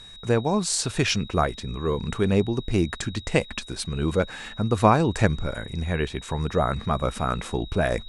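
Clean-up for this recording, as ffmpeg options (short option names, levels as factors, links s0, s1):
-af "bandreject=f=3800:w=30"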